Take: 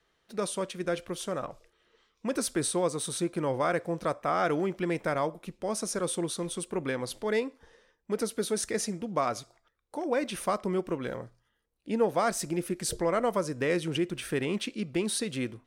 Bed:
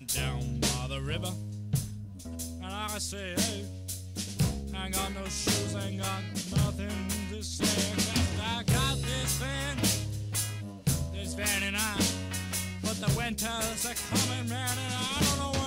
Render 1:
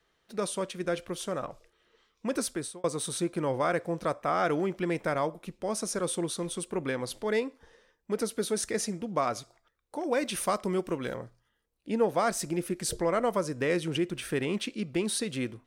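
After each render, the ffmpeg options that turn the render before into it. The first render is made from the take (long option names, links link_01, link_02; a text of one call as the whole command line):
ffmpeg -i in.wav -filter_complex "[0:a]asettb=1/sr,asplit=3[link_01][link_02][link_03];[link_01]atrim=end=10.044[link_04];[link_02]atrim=start=10.04:end=11.14,asetpts=PTS-STARTPTS,afade=type=in:duration=0.004:curve=qsin,afade=type=out:start_time=1.096:duration=0.004:curve=qsin,highshelf=frequency=3400:gain=6.5[link_05];[link_03]atrim=start=11.136[link_06];[link_04][link_05]acrossfade=duration=0.004:curve1=hsin:curve2=qsin[link_07];[link_07][link_06]acrossfade=duration=0.004:curve1=qsin:curve2=hsin,asplit=2[link_08][link_09];[link_08]atrim=end=2.84,asetpts=PTS-STARTPTS,afade=type=out:start_time=2.39:duration=0.45[link_10];[link_09]atrim=start=2.84,asetpts=PTS-STARTPTS,afade=type=in:duration=0.004:curve=hsin[link_11];[link_10][link_11]concat=n=2:v=0:a=1" out.wav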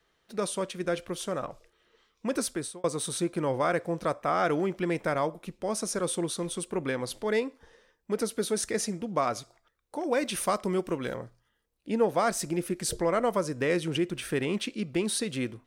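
ffmpeg -i in.wav -af "volume=1dB" out.wav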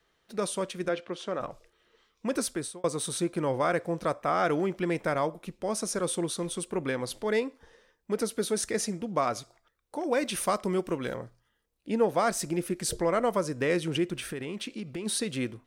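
ffmpeg -i in.wav -filter_complex "[0:a]asplit=3[link_01][link_02][link_03];[link_01]afade=type=out:start_time=0.88:duration=0.02[link_04];[link_02]highpass=210,lowpass=4100,afade=type=in:start_time=0.88:duration=0.02,afade=type=out:start_time=1.39:duration=0.02[link_05];[link_03]afade=type=in:start_time=1.39:duration=0.02[link_06];[link_04][link_05][link_06]amix=inputs=3:normalize=0,asplit=3[link_07][link_08][link_09];[link_07]afade=type=out:start_time=14.3:duration=0.02[link_10];[link_08]acompressor=threshold=-32dB:ratio=6:attack=3.2:release=140:knee=1:detection=peak,afade=type=in:start_time=14.3:duration=0.02,afade=type=out:start_time=15.05:duration=0.02[link_11];[link_09]afade=type=in:start_time=15.05:duration=0.02[link_12];[link_10][link_11][link_12]amix=inputs=3:normalize=0" out.wav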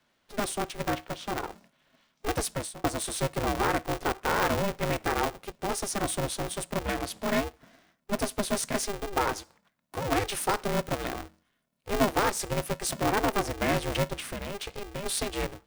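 ffmpeg -i in.wav -af "aeval=exprs='val(0)*sgn(sin(2*PI*200*n/s))':channel_layout=same" out.wav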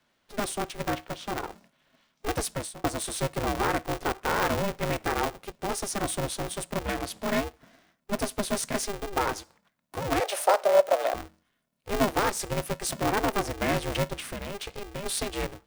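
ffmpeg -i in.wav -filter_complex "[0:a]asettb=1/sr,asplit=3[link_01][link_02][link_03];[link_01]atrim=end=10.204[link_04];[link_02]atrim=start=10.2:end=11.14,asetpts=PTS-STARTPTS,afade=type=in:duration=0.004:curve=qsin,afade=type=out:start_time=0.936:duration=0.004:curve=qsin,highpass=frequency=600:width_type=q:width=5.7[link_05];[link_03]atrim=start=11.136[link_06];[link_04][link_05]acrossfade=duration=0.004:curve1=hsin:curve2=qsin[link_07];[link_07][link_06]acrossfade=duration=0.004:curve1=qsin:curve2=hsin" out.wav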